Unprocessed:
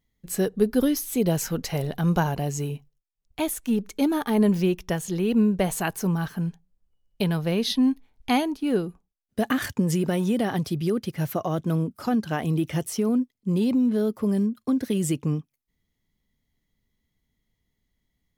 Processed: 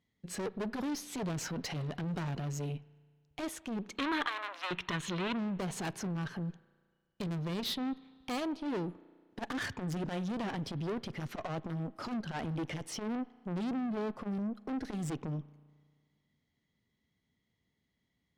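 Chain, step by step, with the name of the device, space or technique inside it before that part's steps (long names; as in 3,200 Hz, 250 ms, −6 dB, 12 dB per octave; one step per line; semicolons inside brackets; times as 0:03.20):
valve radio (band-pass filter 100–5,100 Hz; tube saturation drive 32 dB, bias 0.3; saturating transformer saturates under 150 Hz)
0:04.26–0:04.71: Butterworth high-pass 570 Hz 36 dB per octave
0:03.97–0:05.36: gain on a spectral selection 940–4,300 Hz +10 dB
spring reverb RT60 1.8 s, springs 34 ms, chirp 20 ms, DRR 19.5 dB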